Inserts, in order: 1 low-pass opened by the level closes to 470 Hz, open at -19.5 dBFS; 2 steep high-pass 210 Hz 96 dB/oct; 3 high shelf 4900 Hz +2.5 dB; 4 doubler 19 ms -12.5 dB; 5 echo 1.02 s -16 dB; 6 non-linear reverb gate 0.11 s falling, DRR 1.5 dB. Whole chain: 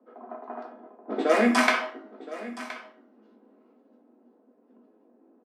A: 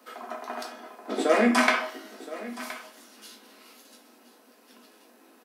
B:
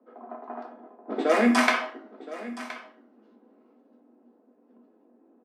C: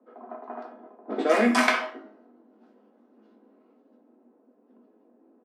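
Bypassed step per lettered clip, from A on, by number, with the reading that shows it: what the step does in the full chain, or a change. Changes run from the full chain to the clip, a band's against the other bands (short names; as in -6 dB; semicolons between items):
1, 8 kHz band +1.5 dB; 4, 250 Hz band +1.5 dB; 5, momentary loudness spread change -1 LU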